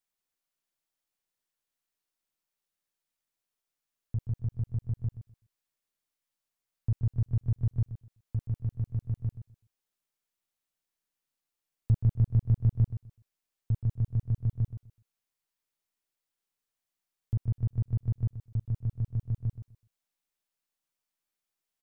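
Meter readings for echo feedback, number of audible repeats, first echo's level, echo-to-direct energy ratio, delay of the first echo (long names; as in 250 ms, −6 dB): 20%, 2, −12.0 dB, −12.0 dB, 126 ms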